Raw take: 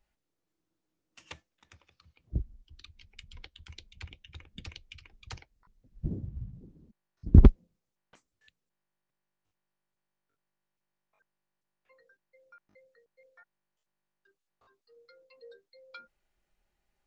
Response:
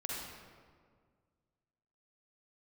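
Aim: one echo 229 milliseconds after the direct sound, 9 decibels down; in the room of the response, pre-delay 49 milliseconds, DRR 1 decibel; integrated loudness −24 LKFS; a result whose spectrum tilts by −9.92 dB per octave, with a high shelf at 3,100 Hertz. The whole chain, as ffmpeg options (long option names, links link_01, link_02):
-filter_complex "[0:a]highshelf=frequency=3100:gain=4,aecho=1:1:229:0.355,asplit=2[link_01][link_02];[1:a]atrim=start_sample=2205,adelay=49[link_03];[link_02][link_03]afir=irnorm=-1:irlink=0,volume=-3dB[link_04];[link_01][link_04]amix=inputs=2:normalize=0,volume=1dB"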